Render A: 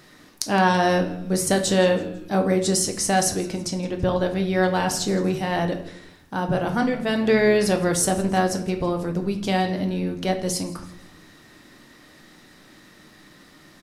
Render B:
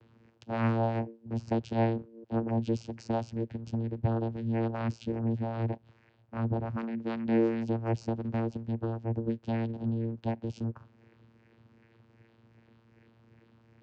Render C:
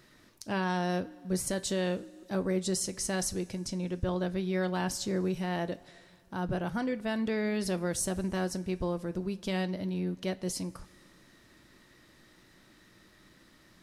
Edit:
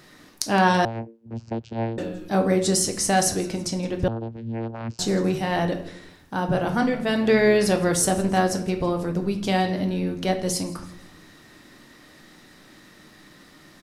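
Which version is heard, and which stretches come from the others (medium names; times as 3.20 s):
A
0.85–1.98 s: from B
4.08–4.99 s: from B
not used: C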